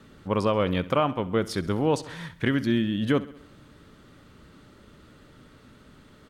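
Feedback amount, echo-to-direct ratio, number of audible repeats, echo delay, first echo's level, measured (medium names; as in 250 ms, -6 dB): 58%, -16.5 dB, 4, 66 ms, -18.5 dB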